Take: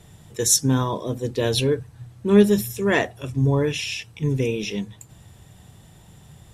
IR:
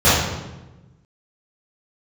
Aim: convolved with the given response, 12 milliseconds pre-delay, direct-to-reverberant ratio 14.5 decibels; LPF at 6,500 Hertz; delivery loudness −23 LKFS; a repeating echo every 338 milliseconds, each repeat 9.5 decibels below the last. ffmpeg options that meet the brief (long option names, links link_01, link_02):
-filter_complex "[0:a]lowpass=6500,aecho=1:1:338|676|1014|1352:0.335|0.111|0.0365|0.012,asplit=2[link_01][link_02];[1:a]atrim=start_sample=2205,adelay=12[link_03];[link_02][link_03]afir=irnorm=-1:irlink=0,volume=-40.5dB[link_04];[link_01][link_04]amix=inputs=2:normalize=0,volume=-1.5dB"